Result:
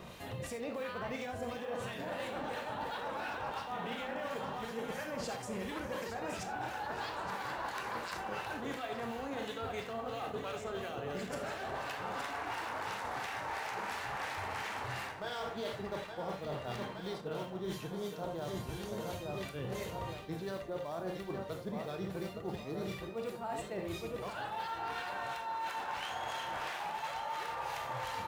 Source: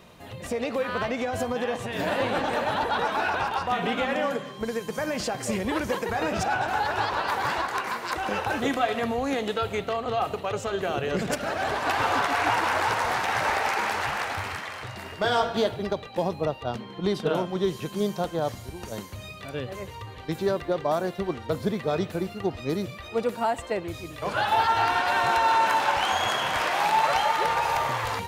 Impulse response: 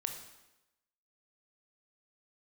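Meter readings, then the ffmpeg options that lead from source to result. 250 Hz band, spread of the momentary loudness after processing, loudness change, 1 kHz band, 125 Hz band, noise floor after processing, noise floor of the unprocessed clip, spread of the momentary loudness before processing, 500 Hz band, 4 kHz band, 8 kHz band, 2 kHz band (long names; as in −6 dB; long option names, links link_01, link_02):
−12.0 dB, 2 LU, −13.0 dB, −14.0 dB, −10.0 dB, −45 dBFS, −41 dBFS, 9 LU, −12.0 dB, −12.5 dB, −11.5 dB, −13.0 dB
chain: -filter_complex "[0:a]aecho=1:1:868|1736|2604|3472|4340|5208|6076:0.376|0.21|0.118|0.066|0.037|0.0207|0.0116,acrusher=bits=8:mode=log:mix=0:aa=0.000001,acrossover=split=1600[link_01][link_02];[link_01]aeval=exprs='val(0)*(1-0.5/2+0.5/2*cos(2*PI*2.9*n/s))':channel_layout=same[link_03];[link_02]aeval=exprs='val(0)*(1-0.5/2-0.5/2*cos(2*PI*2.9*n/s))':channel_layout=same[link_04];[link_03][link_04]amix=inputs=2:normalize=0[link_05];[1:a]atrim=start_sample=2205,afade=type=out:start_time=0.14:duration=0.01,atrim=end_sample=6615[link_06];[link_05][link_06]afir=irnorm=-1:irlink=0,areverse,acompressor=threshold=-40dB:ratio=16,areverse,volume=4dB"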